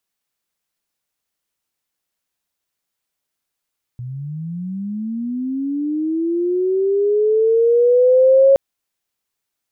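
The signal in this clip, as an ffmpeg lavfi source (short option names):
-f lavfi -i "aevalsrc='pow(10,(-26+19*t/4.57)/20)*sin(2*PI*(120*t+430*t*t/(2*4.57)))':d=4.57:s=44100"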